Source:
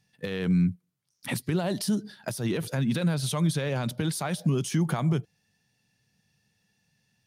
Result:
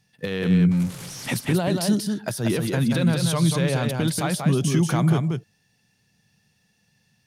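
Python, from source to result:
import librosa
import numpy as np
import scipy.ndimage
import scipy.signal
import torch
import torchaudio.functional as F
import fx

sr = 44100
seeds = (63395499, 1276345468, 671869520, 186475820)

y = fx.delta_mod(x, sr, bps=64000, step_db=-36.0, at=(0.71, 1.34))
y = y + 10.0 ** (-4.5 / 20.0) * np.pad(y, (int(186 * sr / 1000.0), 0))[:len(y)]
y = F.gain(torch.from_numpy(y), 4.5).numpy()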